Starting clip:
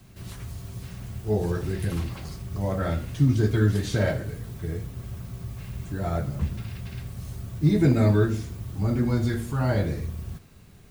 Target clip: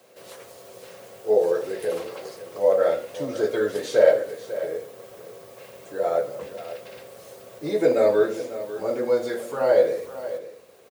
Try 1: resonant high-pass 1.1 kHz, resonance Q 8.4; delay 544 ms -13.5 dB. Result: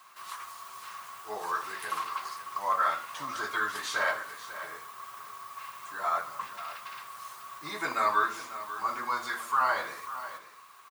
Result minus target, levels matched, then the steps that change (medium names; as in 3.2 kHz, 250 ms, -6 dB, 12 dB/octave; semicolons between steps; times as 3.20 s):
1 kHz band +15.0 dB
change: resonant high-pass 510 Hz, resonance Q 8.4